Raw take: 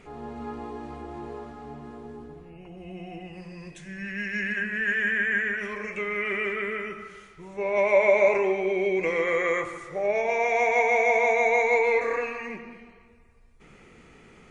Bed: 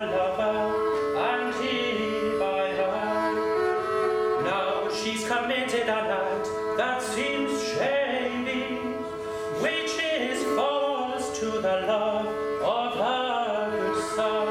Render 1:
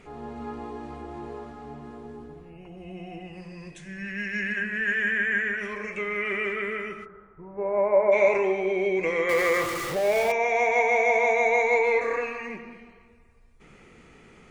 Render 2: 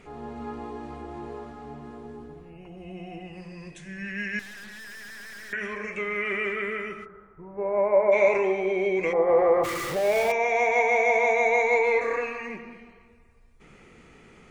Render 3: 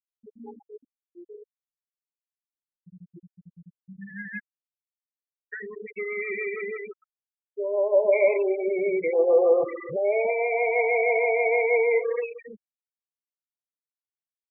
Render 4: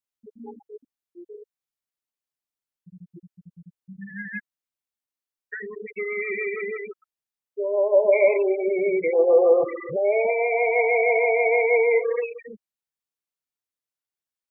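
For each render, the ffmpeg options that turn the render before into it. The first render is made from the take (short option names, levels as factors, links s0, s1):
-filter_complex "[0:a]asplit=3[s0][s1][s2];[s0]afade=t=out:st=7.04:d=0.02[s3];[s1]lowpass=f=1400:w=0.5412,lowpass=f=1400:w=1.3066,afade=t=in:st=7.04:d=0.02,afade=t=out:st=8.11:d=0.02[s4];[s2]afade=t=in:st=8.11:d=0.02[s5];[s3][s4][s5]amix=inputs=3:normalize=0,asettb=1/sr,asplit=3[s6][s7][s8];[s6]atrim=end=9.294[s9];[s7]atrim=start=9.29:end=10.32,asetpts=PTS-STARTPTS,afade=t=in:d=0.004:c=qsin,afade=t=out:st=1.026:d=0.004:c=qsin,aeval=exprs='val(0)+0.5*0.0422*sgn(val(0))':c=same[s10];[s8]atrim=start=10.316[s11];[s9][s10]acrossfade=d=0.004:c1=hsin:c2=qsin[s12];[s12][s11]acrossfade=d=0.004:c1=qsin:c2=hsin"
-filter_complex "[0:a]asettb=1/sr,asplit=3[s0][s1][s2];[s0]atrim=end=4.394[s3];[s1]atrim=start=4.39:end=5.53,asetpts=PTS-STARTPTS,afade=t=in:d=0.004:c=qsin,afade=t=out:st=1.136:d=0.004:c=qsin,aeval=exprs='(tanh(126*val(0)+0.5)-tanh(0.5))/126':c=same[s4];[s2]atrim=start=5.526[s5];[s3][s4]acrossfade=d=0.004:c1=hsin:c2=qsin[s6];[s6][s5]acrossfade=d=0.004:c1=qsin:c2=hsin,asplit=3[s7][s8][s9];[s7]afade=t=out:st=9.12:d=0.02[s10];[s8]lowpass=f=780:t=q:w=6,afade=t=in:st=9.12:d=0.02,afade=t=out:st=9.63:d=0.02[s11];[s9]afade=t=in:st=9.63:d=0.02[s12];[s10][s11][s12]amix=inputs=3:normalize=0"
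-af "afftfilt=real='re*gte(hypot(re,im),0.112)':imag='im*gte(hypot(re,im),0.112)':win_size=1024:overlap=0.75,equalizer=f=250:t=o:w=1:g=-4,equalizer=f=500:t=o:w=1:g=5,equalizer=f=1000:t=o:w=1:g=-11"
-af "volume=1.33"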